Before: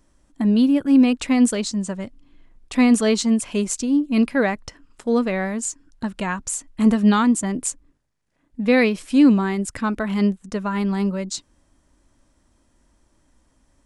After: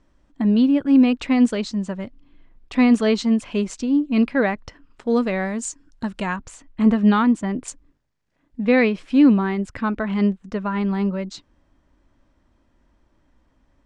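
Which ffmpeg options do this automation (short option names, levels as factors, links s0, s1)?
-af "asetnsamples=n=441:p=0,asendcmd='5.1 lowpass f 7400;6.36 lowpass f 3100;7.68 lowpass f 6000;8.65 lowpass f 3300',lowpass=4000"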